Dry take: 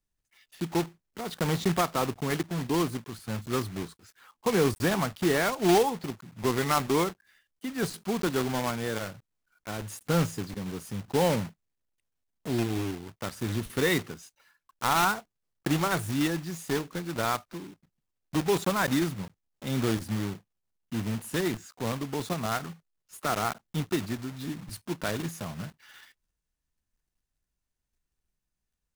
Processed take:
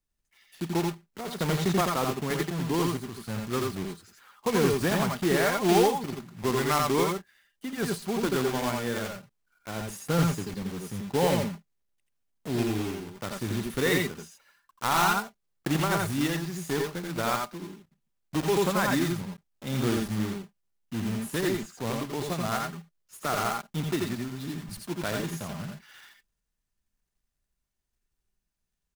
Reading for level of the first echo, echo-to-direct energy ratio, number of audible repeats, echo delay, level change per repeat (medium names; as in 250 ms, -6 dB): -4.0 dB, -2.0 dB, 1, 84 ms, no regular repeats